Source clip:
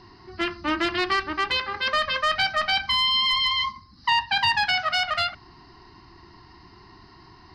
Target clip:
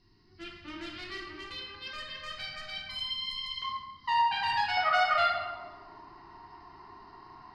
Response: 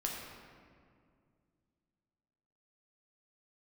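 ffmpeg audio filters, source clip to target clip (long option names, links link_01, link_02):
-filter_complex "[0:a]asetnsamples=nb_out_samples=441:pad=0,asendcmd='3.62 equalizer g 4.5;4.77 equalizer g 14.5',equalizer=frequency=870:width=0.61:gain=-12.5[link_01];[1:a]atrim=start_sample=2205,asetrate=83790,aresample=44100[link_02];[link_01][link_02]afir=irnorm=-1:irlink=0,volume=-8dB"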